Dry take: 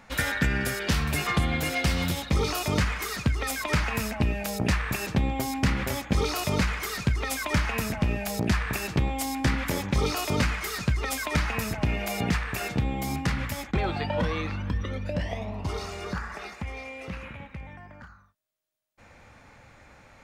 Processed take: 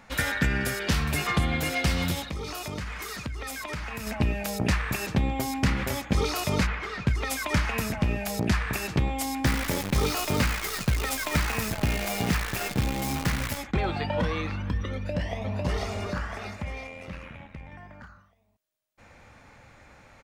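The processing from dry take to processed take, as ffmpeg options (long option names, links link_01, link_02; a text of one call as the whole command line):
ffmpeg -i in.wav -filter_complex "[0:a]asettb=1/sr,asplit=3[link_01][link_02][link_03];[link_01]atrim=end=2.234[link_04];[link_02]atrim=start=2.23:end=4.07,asetpts=PTS-STARTPTS,afade=type=in:duration=0.004:curve=qsin,afade=type=out:start_time=1.836:duration=0.004:curve=qsin,acompressor=threshold=-33dB:ratio=3:attack=3.2:release=140:knee=1:detection=peak[link_05];[link_03]atrim=start=4.066[link_06];[link_04][link_05]acrossfade=duration=0.004:curve1=hsin:curve2=qsin[link_07];[link_07][link_06]acrossfade=duration=0.004:curve1=qsin:curve2=hsin,asplit=3[link_08][link_09][link_10];[link_08]afade=type=out:start_time=6.66:duration=0.02[link_11];[link_09]lowpass=2900,afade=type=in:start_time=6.66:duration=0.02,afade=type=out:start_time=7.06:duration=0.02[link_12];[link_10]afade=type=in:start_time=7.06:duration=0.02[link_13];[link_11][link_12][link_13]amix=inputs=3:normalize=0,asettb=1/sr,asplit=3[link_14][link_15][link_16];[link_14]atrim=end=9.454[link_17];[link_15]atrim=start=9.45:end=13.58,asetpts=PTS-STARTPTS,afade=type=in:duration=0.004:curve=qsin,afade=type=out:start_time=4.126:duration=0.004:curve=qsin,acrusher=bits=6:dc=4:mix=0:aa=0.000001[link_18];[link_16]atrim=start=13.576[link_19];[link_17][link_18]acrossfade=duration=0.004:curve1=hsin:curve2=qsin[link_20];[link_20][link_19]acrossfade=duration=0.004:curve1=qsin:curve2=hsin,asplit=2[link_21][link_22];[link_22]afade=type=in:start_time=14.94:duration=0.01,afade=type=out:start_time=15.56:duration=0.01,aecho=0:1:500|1000|1500|2000|2500|3000:0.841395|0.378628|0.170383|0.0766721|0.0345025|0.0155261[link_23];[link_21][link_23]amix=inputs=2:normalize=0,asettb=1/sr,asplit=3[link_24][link_25][link_26];[link_24]atrim=end=16.874[link_27];[link_25]atrim=start=16.87:end=17.72,asetpts=PTS-STARTPTS,afade=type=in:duration=0.004:curve=qsin,afade=type=out:start_time=0.846:duration=0.004:curve=qsin,tremolo=f=84:d=0.621[link_28];[link_26]atrim=start=17.716[link_29];[link_27][link_28]acrossfade=duration=0.004:curve1=hsin:curve2=qsin[link_30];[link_30][link_29]acrossfade=duration=0.004:curve1=qsin:curve2=hsin" out.wav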